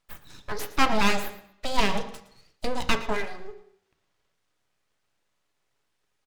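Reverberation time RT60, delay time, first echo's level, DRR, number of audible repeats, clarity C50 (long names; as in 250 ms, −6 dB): 0.70 s, 114 ms, −16.0 dB, 7.5 dB, 2, 11.0 dB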